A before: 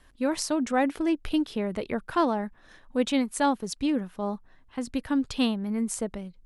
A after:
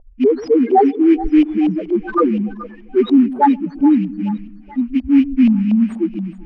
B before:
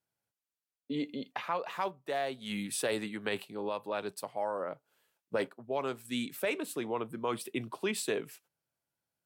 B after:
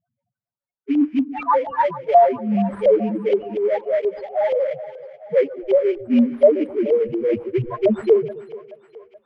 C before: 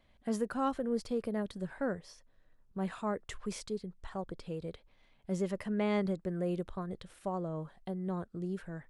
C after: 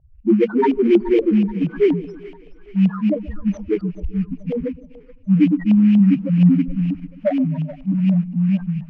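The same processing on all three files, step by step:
cycle switcher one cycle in 2, muted; loudest bins only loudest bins 1; in parallel at -11 dB: sample-rate reducer 2.7 kHz, jitter 20%; on the sum: LFO low-pass saw up 4.2 Hz 690–3000 Hz; two-band feedback delay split 500 Hz, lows 130 ms, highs 427 ms, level -15.5 dB; peak normalisation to -3 dBFS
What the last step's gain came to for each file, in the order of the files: +22.5 dB, +27.5 dB, +29.5 dB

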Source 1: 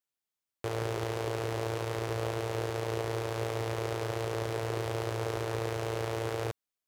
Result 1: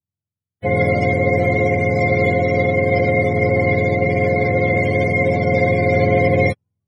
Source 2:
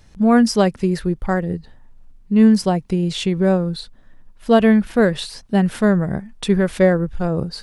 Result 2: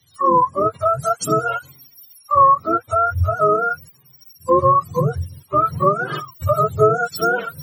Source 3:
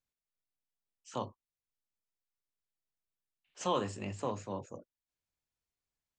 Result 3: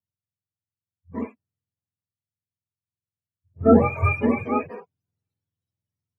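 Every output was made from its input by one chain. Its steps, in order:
spectrum inverted on a logarithmic axis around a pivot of 490 Hz; gain riding within 3 dB 2 s; harmonic-percussive split percussive -13 dB; compression 2.5:1, threshold -27 dBFS; three bands expanded up and down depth 40%; peak normalisation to -3 dBFS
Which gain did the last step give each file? +21.0 dB, +9.5 dB, +20.0 dB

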